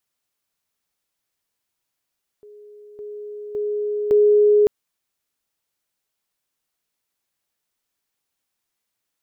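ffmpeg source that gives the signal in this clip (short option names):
-f lavfi -i "aevalsrc='pow(10,(-41+10*floor(t/0.56))/20)*sin(2*PI*417*t)':d=2.24:s=44100"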